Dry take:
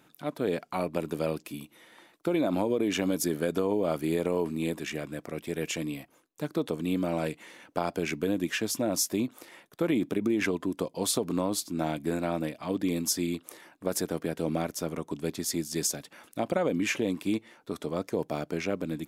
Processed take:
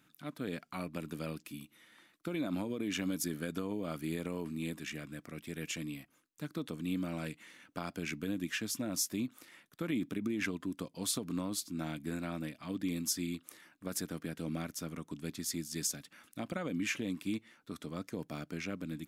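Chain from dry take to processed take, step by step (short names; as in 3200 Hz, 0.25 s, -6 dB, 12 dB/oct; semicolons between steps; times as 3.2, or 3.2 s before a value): band shelf 590 Hz -8.5 dB; gain -5.5 dB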